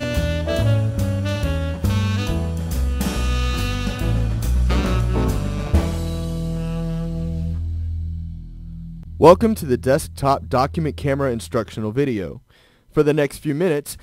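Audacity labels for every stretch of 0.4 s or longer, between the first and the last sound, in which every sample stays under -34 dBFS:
12.380000	12.960000	silence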